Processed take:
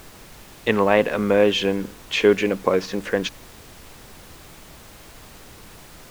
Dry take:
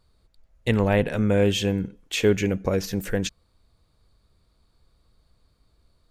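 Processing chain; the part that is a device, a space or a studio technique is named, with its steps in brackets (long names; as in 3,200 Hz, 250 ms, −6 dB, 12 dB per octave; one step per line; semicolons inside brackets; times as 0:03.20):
horn gramophone (band-pass filter 280–4,100 Hz; parametric band 1,100 Hz +8 dB 0.29 octaves; tape wow and flutter; pink noise bed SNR 20 dB)
level +5.5 dB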